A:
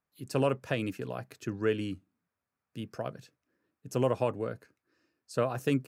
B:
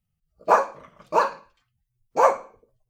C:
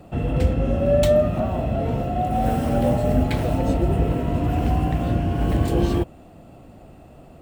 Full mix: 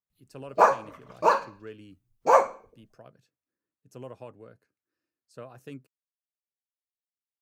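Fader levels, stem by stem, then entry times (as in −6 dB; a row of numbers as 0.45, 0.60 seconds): −14.5 dB, −1.0 dB, muted; 0.00 s, 0.10 s, muted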